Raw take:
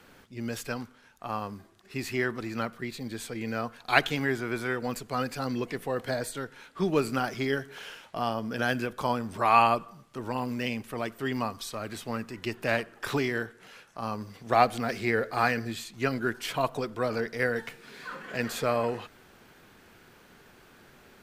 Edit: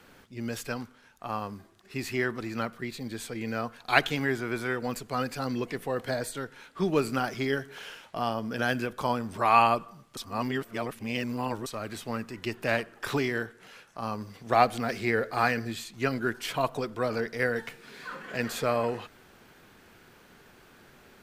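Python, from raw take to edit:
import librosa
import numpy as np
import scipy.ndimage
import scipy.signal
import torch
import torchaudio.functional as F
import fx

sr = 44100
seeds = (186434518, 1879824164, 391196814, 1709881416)

y = fx.edit(x, sr, fx.reverse_span(start_s=10.17, length_s=1.49), tone=tone)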